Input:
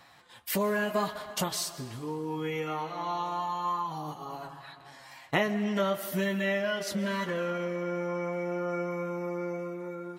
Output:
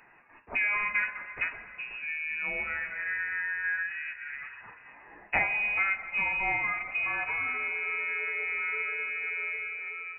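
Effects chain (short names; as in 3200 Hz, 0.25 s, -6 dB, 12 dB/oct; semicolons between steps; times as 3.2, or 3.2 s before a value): inverted band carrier 2700 Hz; de-hum 65.23 Hz, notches 27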